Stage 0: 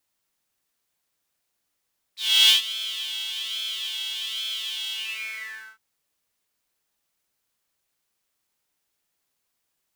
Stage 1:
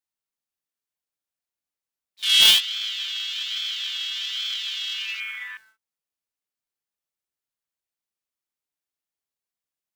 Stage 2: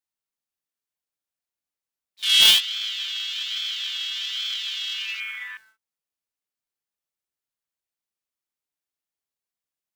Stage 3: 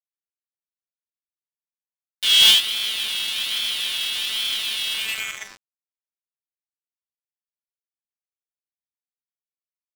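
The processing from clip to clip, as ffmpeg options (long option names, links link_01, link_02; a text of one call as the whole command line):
ffmpeg -i in.wav -af "acrusher=bits=2:mode=log:mix=0:aa=0.000001,afwtdn=0.02,volume=2dB" out.wav
ffmpeg -i in.wav -af anull out.wav
ffmpeg -i in.wav -filter_complex "[0:a]asplit=2[link_01][link_02];[link_02]asoftclip=type=hard:threshold=-16.5dB,volume=-4dB[link_03];[link_01][link_03]amix=inputs=2:normalize=0,acrusher=bits=3:mix=0:aa=0.5,volume=-1dB" out.wav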